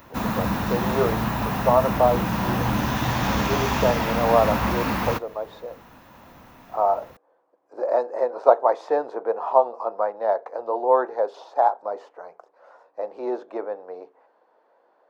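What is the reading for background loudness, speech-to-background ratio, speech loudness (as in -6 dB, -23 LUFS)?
-24.5 LUFS, 0.0 dB, -24.5 LUFS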